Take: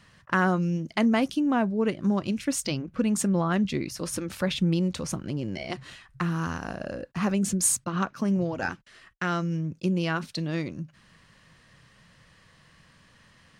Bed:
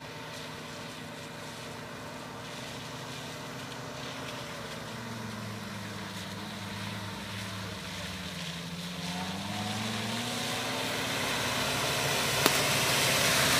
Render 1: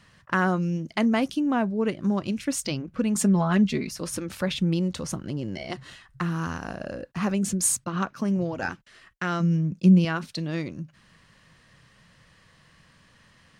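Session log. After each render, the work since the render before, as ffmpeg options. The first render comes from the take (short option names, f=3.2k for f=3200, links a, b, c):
-filter_complex "[0:a]asettb=1/sr,asplit=3[a][b][c];[a]atrim=end=3.154[d];[b]atrim=start=3.15:end=3.94,asetpts=PTS-STARTPTS,afade=t=in:d=0.004:c=qsin,afade=t=out:st=0.786:d=0.004:c=qsin,aecho=1:1:4.7:0.8,atrim=end_sample=34839[e];[c]atrim=start=3.936[f];[d][e]acrossfade=d=0.004:c1=hsin:c2=qsin[g];[g][f]acrossfade=d=0.004:c1=qsin:c2=hsin,asettb=1/sr,asplit=3[h][i][j];[h]atrim=end=4.854[k];[i]atrim=start=4.85:end=6.26,asetpts=PTS-STARTPTS,afade=t=in:d=0.004:c=qsin,afade=t=out:st=1.406:d=0.004:c=qsin,bandreject=f=2.4k:w=12[l];[j]atrim=start=6.256[m];[k][l]acrossfade=d=0.004:c1=hsin:c2=qsin[n];[n][m]acrossfade=d=0.004:c1=qsin:c2=hsin,asettb=1/sr,asplit=3[o][p][q];[o]atrim=end=9.404[r];[p]atrim=start=9.4:end=10.05,asetpts=PTS-STARTPTS,afade=t=in:d=0.004:c=qsin,afade=t=out:st=0.646:d=0.004:c=qsin,equalizer=f=190:t=o:w=0.45:g=11.5[s];[q]atrim=start=10.046[t];[r][s]acrossfade=d=0.004:c1=hsin:c2=qsin[u];[u][t]acrossfade=d=0.004:c1=qsin:c2=hsin"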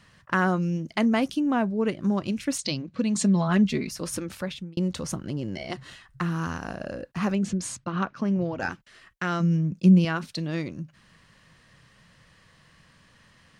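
-filter_complex "[0:a]asplit=3[a][b][c];[a]afade=t=out:st=2.57:d=0.02[d];[b]highpass=100,equalizer=f=410:t=q:w=4:g=-4,equalizer=f=810:t=q:w=4:g=-4,equalizer=f=1.4k:t=q:w=4:g=-7,equalizer=f=4.1k:t=q:w=4:g=9,lowpass=f=8.4k:w=0.5412,lowpass=f=8.4k:w=1.3066,afade=t=in:st=2.57:d=0.02,afade=t=out:st=3.47:d=0.02[e];[c]afade=t=in:st=3.47:d=0.02[f];[d][e][f]amix=inputs=3:normalize=0,asettb=1/sr,asplit=3[g][h][i];[g]atrim=end=7.354[j];[h]atrim=start=7.35:end=8.6,asetpts=PTS-STARTPTS,afade=t=in:d=0.004:c=qsin,afade=t=out:st=1.246:d=0.004:c=qsin,lowpass=4.4k[k];[i]atrim=start=8.596[l];[j][k]acrossfade=d=0.004:c1=hsin:c2=qsin[m];[m][l]acrossfade=d=0.004:c1=qsin:c2=hsin,asplit=2[n][o];[n]atrim=end=4.77,asetpts=PTS-STARTPTS,afade=t=out:st=4.21:d=0.56[p];[o]atrim=start=4.77,asetpts=PTS-STARTPTS,afade=t=in:d=0.004:c=hsin[q];[p][q]concat=n=2:v=0:a=1"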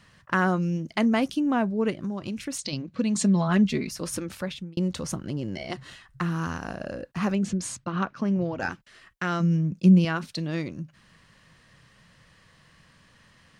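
-filter_complex "[0:a]asettb=1/sr,asplit=3[a][b][c];[a]atrim=end=2.024[d];[b]atrim=start=2.02:end=2.73,asetpts=PTS-STARTPTS,afade=t=in:d=0.004:c=qsin,afade=t=out:st=0.706:d=0.004:c=qsin,acompressor=threshold=-28dB:ratio=4:attack=3.2:release=140:knee=1:detection=peak[e];[c]atrim=start=2.726[f];[d][e]acrossfade=d=0.004:c1=hsin:c2=qsin[g];[g][f]acrossfade=d=0.004:c1=qsin:c2=hsin"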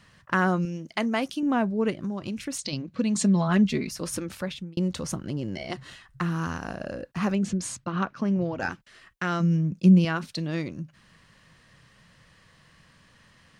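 -filter_complex "[0:a]asettb=1/sr,asplit=3[a][b][c];[a]atrim=end=0.654[d];[b]atrim=start=0.65:end=1.43,asetpts=PTS-STARTPTS,afade=t=in:d=0.004:c=qsin,afade=t=out:st=0.776:d=0.004:c=qsin,lowshelf=f=270:g=-9.5[e];[c]atrim=start=1.426[f];[d][e]acrossfade=d=0.004:c1=hsin:c2=qsin[g];[g][f]acrossfade=d=0.004:c1=qsin:c2=hsin"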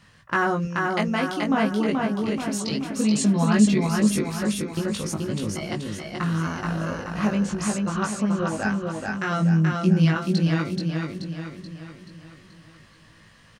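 -filter_complex "[0:a]asplit=2[a][b];[b]adelay=19,volume=-2.5dB[c];[a][c]amix=inputs=2:normalize=0,aecho=1:1:430|860|1290|1720|2150|2580:0.708|0.347|0.17|0.0833|0.0408|0.02"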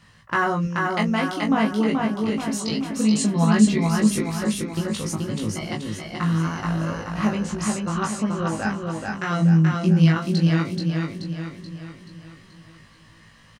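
-filter_complex "[0:a]asplit=2[a][b];[b]adelay=18,volume=-6dB[c];[a][c]amix=inputs=2:normalize=0"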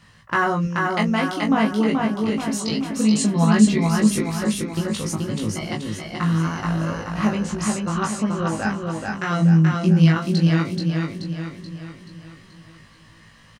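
-af "volume=1.5dB"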